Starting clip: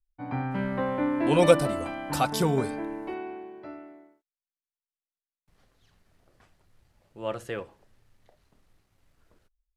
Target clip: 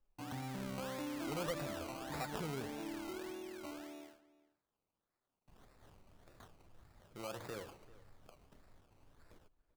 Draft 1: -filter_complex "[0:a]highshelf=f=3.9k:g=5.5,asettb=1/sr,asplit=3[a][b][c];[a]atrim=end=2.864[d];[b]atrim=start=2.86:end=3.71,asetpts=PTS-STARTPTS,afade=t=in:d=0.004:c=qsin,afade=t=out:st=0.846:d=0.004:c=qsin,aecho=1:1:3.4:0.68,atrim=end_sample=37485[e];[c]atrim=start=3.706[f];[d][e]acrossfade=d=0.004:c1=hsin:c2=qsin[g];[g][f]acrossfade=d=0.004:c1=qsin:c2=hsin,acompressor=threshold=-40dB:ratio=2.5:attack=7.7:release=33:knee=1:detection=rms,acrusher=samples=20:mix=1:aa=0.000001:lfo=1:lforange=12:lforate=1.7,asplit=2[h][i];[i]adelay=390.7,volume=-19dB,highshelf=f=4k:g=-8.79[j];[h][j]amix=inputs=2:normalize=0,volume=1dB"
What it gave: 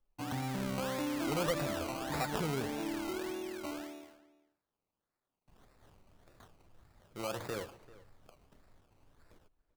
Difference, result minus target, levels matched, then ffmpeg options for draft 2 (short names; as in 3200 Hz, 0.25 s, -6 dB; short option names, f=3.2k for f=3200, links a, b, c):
compressor: peak gain reduction -6.5 dB
-filter_complex "[0:a]highshelf=f=3.9k:g=5.5,asettb=1/sr,asplit=3[a][b][c];[a]atrim=end=2.864[d];[b]atrim=start=2.86:end=3.71,asetpts=PTS-STARTPTS,afade=t=in:d=0.004:c=qsin,afade=t=out:st=0.846:d=0.004:c=qsin,aecho=1:1:3.4:0.68,atrim=end_sample=37485[e];[c]atrim=start=3.706[f];[d][e]acrossfade=d=0.004:c1=hsin:c2=qsin[g];[g][f]acrossfade=d=0.004:c1=qsin:c2=hsin,acompressor=threshold=-51dB:ratio=2.5:attack=7.7:release=33:knee=1:detection=rms,acrusher=samples=20:mix=1:aa=0.000001:lfo=1:lforange=12:lforate=1.7,asplit=2[h][i];[i]adelay=390.7,volume=-19dB,highshelf=f=4k:g=-8.79[j];[h][j]amix=inputs=2:normalize=0,volume=1dB"